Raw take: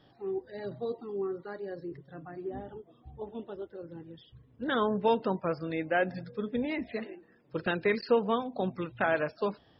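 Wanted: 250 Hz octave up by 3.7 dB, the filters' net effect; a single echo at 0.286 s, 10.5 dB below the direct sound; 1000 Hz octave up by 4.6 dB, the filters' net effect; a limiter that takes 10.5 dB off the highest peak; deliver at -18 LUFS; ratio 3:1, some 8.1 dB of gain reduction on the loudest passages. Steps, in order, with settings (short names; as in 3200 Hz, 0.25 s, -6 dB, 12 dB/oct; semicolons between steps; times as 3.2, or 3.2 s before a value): bell 250 Hz +4.5 dB; bell 1000 Hz +5.5 dB; compressor 3:1, threshold -28 dBFS; limiter -25 dBFS; echo 0.286 s -10.5 dB; gain +18.5 dB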